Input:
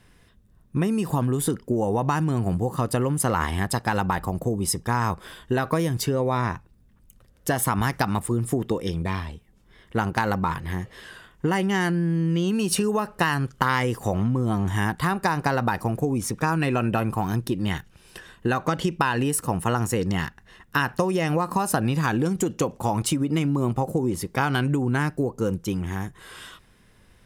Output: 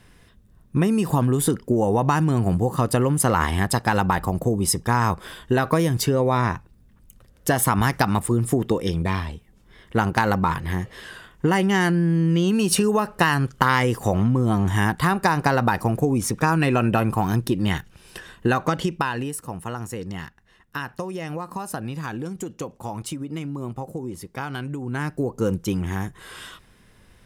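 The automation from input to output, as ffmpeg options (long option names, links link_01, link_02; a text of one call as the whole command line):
ffmpeg -i in.wav -af "volume=13.5dB,afade=type=out:start_time=18.47:duration=0.91:silence=0.281838,afade=type=in:start_time=24.81:duration=0.66:silence=0.316228" out.wav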